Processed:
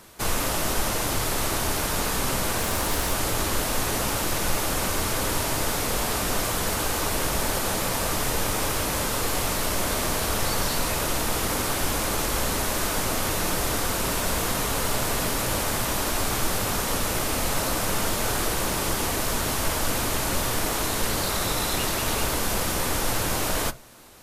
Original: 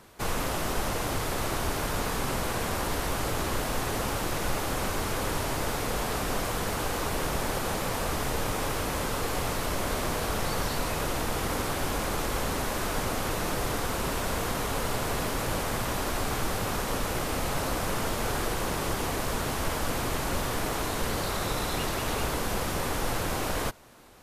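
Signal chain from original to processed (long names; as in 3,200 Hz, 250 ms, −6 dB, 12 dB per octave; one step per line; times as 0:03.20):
high-shelf EQ 3,400 Hz +7.5 dB
0:02.57–0:03.11: background noise white −46 dBFS
on a send: convolution reverb RT60 0.25 s, pre-delay 3 ms, DRR 12.5 dB
on the sum: level +2 dB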